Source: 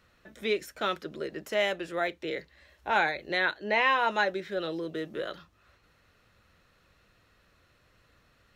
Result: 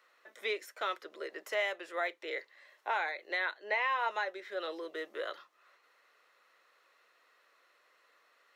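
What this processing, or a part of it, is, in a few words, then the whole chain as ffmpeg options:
laptop speaker: -af "highpass=f=410:w=0.5412,highpass=f=410:w=1.3066,equalizer=f=1100:t=o:w=0.53:g=5.5,equalizer=f=2000:t=o:w=0.2:g=6.5,alimiter=limit=0.112:level=0:latency=1:release=493,volume=0.668"

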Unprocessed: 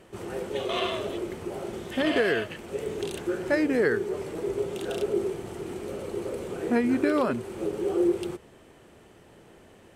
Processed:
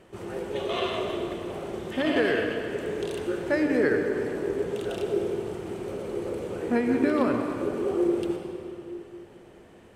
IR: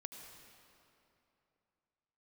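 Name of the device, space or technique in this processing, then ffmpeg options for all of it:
swimming-pool hall: -filter_complex "[1:a]atrim=start_sample=2205[s0];[0:a][s0]afir=irnorm=-1:irlink=0,highshelf=f=4900:g=-5,volume=1.68"

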